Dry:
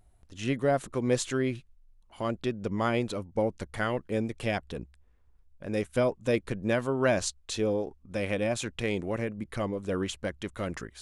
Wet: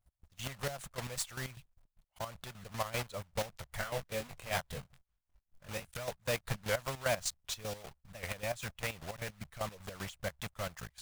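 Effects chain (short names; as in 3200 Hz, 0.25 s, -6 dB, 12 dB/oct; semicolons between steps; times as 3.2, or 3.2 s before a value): block floating point 3-bit; EQ curve 150 Hz 0 dB, 320 Hz -22 dB, 600 Hz -3 dB; chopper 5.1 Hz, depth 65%, duty 45%; gate -58 dBFS, range -15 dB; harmonic-percussive split harmonic -7 dB; 3.77–5.88 doubler 22 ms -4 dB; record warp 78 rpm, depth 160 cents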